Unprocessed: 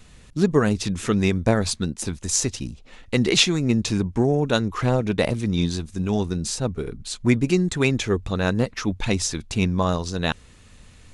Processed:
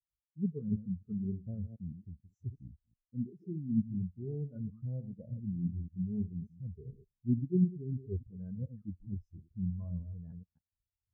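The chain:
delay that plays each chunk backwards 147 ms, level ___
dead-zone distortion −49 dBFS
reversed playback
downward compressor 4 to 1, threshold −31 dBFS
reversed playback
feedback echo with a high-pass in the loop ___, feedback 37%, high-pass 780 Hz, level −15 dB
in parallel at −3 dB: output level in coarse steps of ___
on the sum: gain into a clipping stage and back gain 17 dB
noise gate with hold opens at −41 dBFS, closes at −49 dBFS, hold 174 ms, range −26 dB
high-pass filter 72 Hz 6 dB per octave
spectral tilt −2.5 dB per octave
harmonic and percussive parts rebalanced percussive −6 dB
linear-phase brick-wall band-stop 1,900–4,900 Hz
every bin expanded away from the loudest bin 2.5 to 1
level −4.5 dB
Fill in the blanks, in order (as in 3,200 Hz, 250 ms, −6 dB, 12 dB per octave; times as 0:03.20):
−8 dB, 79 ms, 15 dB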